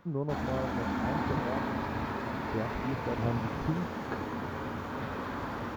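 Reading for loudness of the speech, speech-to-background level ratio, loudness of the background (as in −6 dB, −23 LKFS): −37.5 LKFS, −2.5 dB, −35.0 LKFS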